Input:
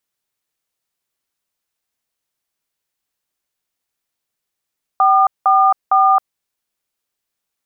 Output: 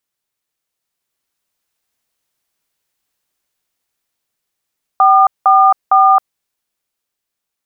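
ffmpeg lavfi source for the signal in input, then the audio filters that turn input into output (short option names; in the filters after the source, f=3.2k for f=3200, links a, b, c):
-f lavfi -i "aevalsrc='0.266*clip(min(mod(t,0.457),0.269-mod(t,0.457))/0.002,0,1)*(eq(floor(t/0.457),0)*(sin(2*PI*770*mod(t,0.457))+sin(2*PI*1209*mod(t,0.457)))+eq(floor(t/0.457),1)*(sin(2*PI*770*mod(t,0.457))+sin(2*PI*1209*mod(t,0.457)))+eq(floor(t/0.457),2)*(sin(2*PI*770*mod(t,0.457))+sin(2*PI*1209*mod(t,0.457))))':d=1.371:s=44100"
-af "dynaudnorm=f=230:g=11:m=6dB"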